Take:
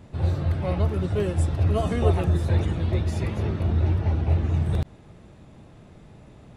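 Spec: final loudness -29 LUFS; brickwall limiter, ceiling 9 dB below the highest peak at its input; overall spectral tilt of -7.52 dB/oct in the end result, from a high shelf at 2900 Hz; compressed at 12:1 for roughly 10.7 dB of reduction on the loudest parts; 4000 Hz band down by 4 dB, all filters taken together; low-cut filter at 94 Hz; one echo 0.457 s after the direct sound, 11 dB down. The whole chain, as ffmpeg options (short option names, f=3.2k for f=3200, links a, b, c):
-af "highpass=94,highshelf=f=2.9k:g=3.5,equalizer=f=4k:t=o:g=-8,acompressor=threshold=-29dB:ratio=12,alimiter=level_in=6.5dB:limit=-24dB:level=0:latency=1,volume=-6.5dB,aecho=1:1:457:0.282,volume=10dB"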